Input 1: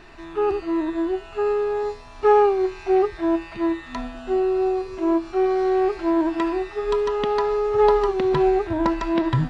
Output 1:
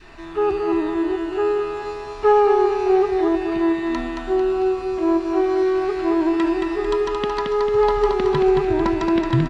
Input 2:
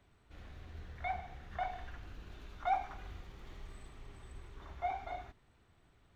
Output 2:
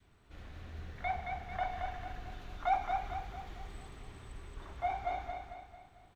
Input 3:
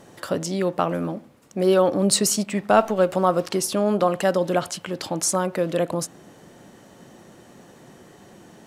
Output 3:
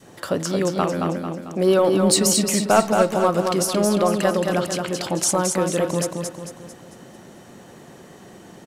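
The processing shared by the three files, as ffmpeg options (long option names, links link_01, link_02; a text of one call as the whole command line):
ffmpeg -i in.wav -filter_complex "[0:a]adynamicequalizer=threshold=0.0224:dfrequency=670:dqfactor=0.91:tfrequency=670:tqfactor=0.91:attack=5:release=100:ratio=0.375:range=2.5:mode=cutabove:tftype=bell,asplit=2[link_01][link_02];[link_02]asoftclip=type=tanh:threshold=-13dB,volume=-7dB[link_03];[link_01][link_03]amix=inputs=2:normalize=0,aecho=1:1:223|446|669|892|1115|1338:0.596|0.274|0.126|0.058|0.0267|0.0123,volume=-1dB" out.wav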